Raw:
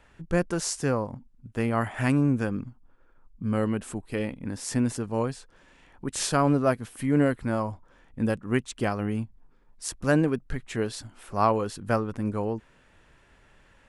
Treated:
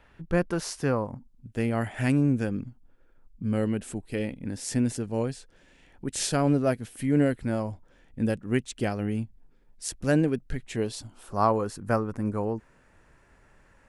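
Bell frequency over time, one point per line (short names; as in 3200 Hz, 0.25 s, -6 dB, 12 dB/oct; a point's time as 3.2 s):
bell -9.5 dB 0.75 oct
0.93 s 7600 Hz
1.47 s 1100 Hz
10.61 s 1100 Hz
11.7 s 3300 Hz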